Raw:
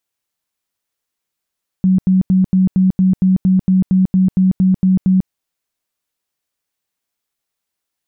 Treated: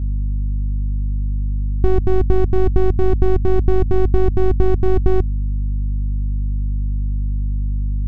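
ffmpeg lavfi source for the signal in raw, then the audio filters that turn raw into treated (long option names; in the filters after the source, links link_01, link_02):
-f lavfi -i "aevalsrc='0.376*sin(2*PI*187*mod(t,0.23))*lt(mod(t,0.23),27/187)':duration=3.45:sample_rate=44100"
-af "aeval=exprs='abs(val(0))':channel_layout=same,aeval=exprs='val(0)+0.0501*(sin(2*PI*50*n/s)+sin(2*PI*2*50*n/s)/2+sin(2*PI*3*50*n/s)/3+sin(2*PI*4*50*n/s)/4+sin(2*PI*5*50*n/s)/5)':channel_layout=same,equalizer=frequency=62:width_type=o:width=1.3:gain=11.5"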